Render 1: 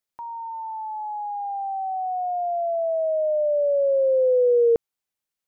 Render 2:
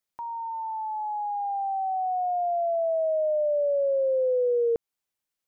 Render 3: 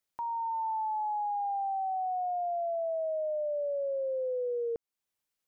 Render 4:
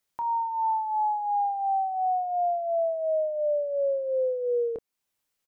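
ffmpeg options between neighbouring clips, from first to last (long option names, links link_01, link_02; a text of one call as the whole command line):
ffmpeg -i in.wav -af "acompressor=threshold=-23dB:ratio=4" out.wav
ffmpeg -i in.wav -af "alimiter=level_in=5dB:limit=-24dB:level=0:latency=1:release=421,volume=-5dB" out.wav
ffmpeg -i in.wav -filter_complex "[0:a]asplit=2[link_01][link_02];[link_02]adelay=27,volume=-8.5dB[link_03];[link_01][link_03]amix=inputs=2:normalize=0,volume=5dB" out.wav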